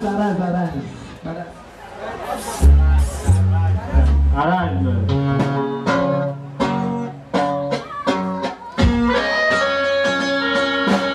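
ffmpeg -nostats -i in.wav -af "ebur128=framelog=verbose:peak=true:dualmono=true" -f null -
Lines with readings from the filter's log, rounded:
Integrated loudness:
  I:         -15.6 LUFS
  Threshold: -26.1 LUFS
Loudness range:
  LRA:         3.7 LU
  Threshold: -36.0 LUFS
  LRA low:   -18.0 LUFS
  LRA high:  -14.3 LUFS
True peak:
  Peak:       -3.6 dBFS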